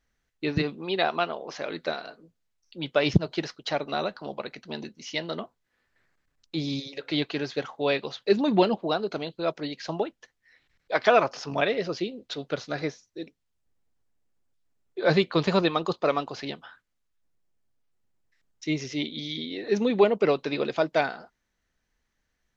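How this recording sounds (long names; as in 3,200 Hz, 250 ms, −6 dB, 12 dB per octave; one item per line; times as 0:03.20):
background noise floor −77 dBFS
spectral slope −4.0 dB per octave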